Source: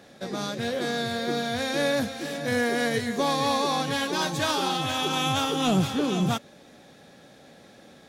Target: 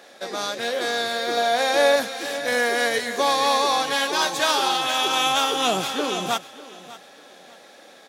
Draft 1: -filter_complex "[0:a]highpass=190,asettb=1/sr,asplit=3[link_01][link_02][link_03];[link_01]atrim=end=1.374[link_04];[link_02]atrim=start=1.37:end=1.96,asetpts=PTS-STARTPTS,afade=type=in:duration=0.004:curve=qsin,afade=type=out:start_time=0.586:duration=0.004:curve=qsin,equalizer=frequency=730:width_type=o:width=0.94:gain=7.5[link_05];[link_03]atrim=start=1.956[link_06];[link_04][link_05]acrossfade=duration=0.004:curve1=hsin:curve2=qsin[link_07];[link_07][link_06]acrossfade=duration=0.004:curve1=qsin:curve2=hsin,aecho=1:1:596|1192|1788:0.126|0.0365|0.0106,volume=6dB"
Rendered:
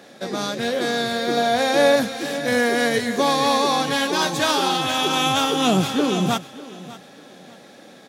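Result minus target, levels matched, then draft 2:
250 Hz band +8.5 dB
-filter_complex "[0:a]highpass=490,asettb=1/sr,asplit=3[link_01][link_02][link_03];[link_01]atrim=end=1.374[link_04];[link_02]atrim=start=1.37:end=1.96,asetpts=PTS-STARTPTS,afade=type=in:duration=0.004:curve=qsin,afade=type=out:start_time=0.586:duration=0.004:curve=qsin,equalizer=frequency=730:width_type=o:width=0.94:gain=7.5[link_05];[link_03]atrim=start=1.956[link_06];[link_04][link_05]acrossfade=duration=0.004:curve1=hsin:curve2=qsin[link_07];[link_07][link_06]acrossfade=duration=0.004:curve1=qsin:curve2=hsin,aecho=1:1:596|1192|1788:0.126|0.0365|0.0106,volume=6dB"

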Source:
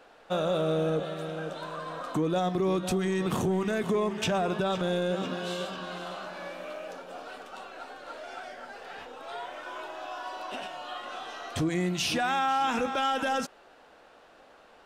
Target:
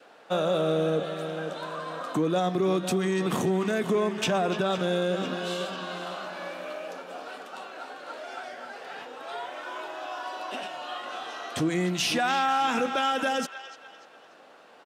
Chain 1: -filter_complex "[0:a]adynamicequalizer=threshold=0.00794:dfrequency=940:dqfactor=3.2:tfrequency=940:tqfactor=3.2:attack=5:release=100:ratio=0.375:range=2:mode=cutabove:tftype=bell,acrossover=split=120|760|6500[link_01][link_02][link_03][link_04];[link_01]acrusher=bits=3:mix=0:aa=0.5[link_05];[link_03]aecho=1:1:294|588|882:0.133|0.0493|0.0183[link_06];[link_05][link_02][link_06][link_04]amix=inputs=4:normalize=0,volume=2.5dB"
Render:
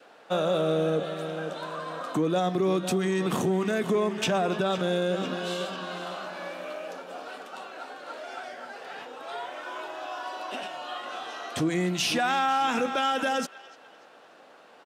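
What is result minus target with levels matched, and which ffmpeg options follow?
echo-to-direct −6.5 dB
-filter_complex "[0:a]adynamicequalizer=threshold=0.00794:dfrequency=940:dqfactor=3.2:tfrequency=940:tqfactor=3.2:attack=5:release=100:ratio=0.375:range=2:mode=cutabove:tftype=bell,acrossover=split=120|760|6500[link_01][link_02][link_03][link_04];[link_01]acrusher=bits=3:mix=0:aa=0.5[link_05];[link_03]aecho=1:1:294|588|882|1176:0.299|0.11|0.0409|0.0151[link_06];[link_05][link_02][link_06][link_04]amix=inputs=4:normalize=0,volume=2.5dB"

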